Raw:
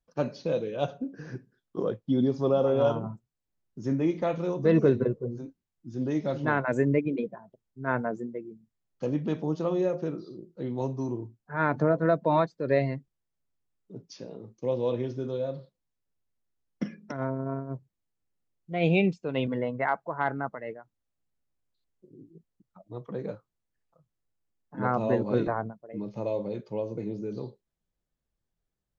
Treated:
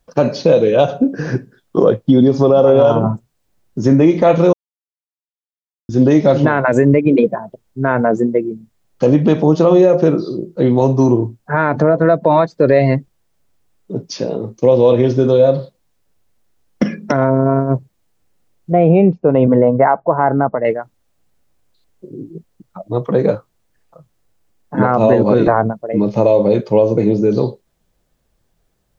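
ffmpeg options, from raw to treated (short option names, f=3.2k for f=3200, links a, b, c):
-filter_complex "[0:a]asettb=1/sr,asplit=3[a][b][c];[a]atrim=end=18.724[d];[b]atrim=start=18.72:end=20.65,asetpts=PTS-STARTPTS,afade=t=in:d=0.004:c=qsin,afade=t=out:st=1.926:d=0.004:c=qsin,lowpass=1k[e];[c]atrim=start=20.646[f];[d][e]acrossfade=d=0.004:c1=hsin:c2=qsin[g];[g][f]acrossfade=d=0.004:c1=qsin:c2=hsin,asplit=3[h][i][j];[h]atrim=end=4.53,asetpts=PTS-STARTPTS,afade=t=out:st=4.526:d=0.004:c=hsin[k];[i]atrim=start=4.53:end=5.89,asetpts=PTS-STARTPTS,volume=0[l];[j]atrim=start=5.89,asetpts=PTS-STARTPTS,afade=t=in:d=0.004:c=hsin[m];[k][l][m]concat=n=3:v=0:a=1,equalizer=f=610:w=1.2:g=3.5,acompressor=threshold=-24dB:ratio=6,alimiter=level_in=20.5dB:limit=-1dB:release=50:level=0:latency=1,volume=-1dB"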